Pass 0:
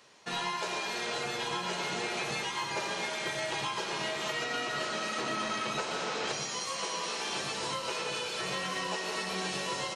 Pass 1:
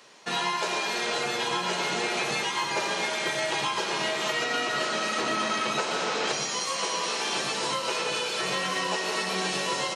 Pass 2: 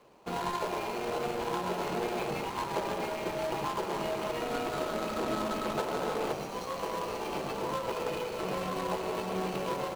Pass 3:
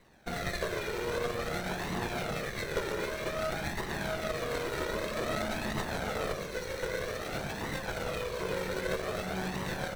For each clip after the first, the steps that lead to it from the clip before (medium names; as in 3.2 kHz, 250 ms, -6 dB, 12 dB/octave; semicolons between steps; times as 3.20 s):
high-pass 160 Hz 12 dB/octave; trim +6 dB
median filter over 25 samples
comb filter that takes the minimum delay 0.5 ms; flange 0.52 Hz, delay 1 ms, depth 1.2 ms, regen +19%; trim +5 dB